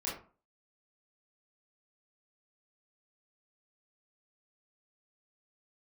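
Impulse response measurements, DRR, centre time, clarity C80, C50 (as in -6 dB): -7.0 dB, 39 ms, 11.0 dB, 5.0 dB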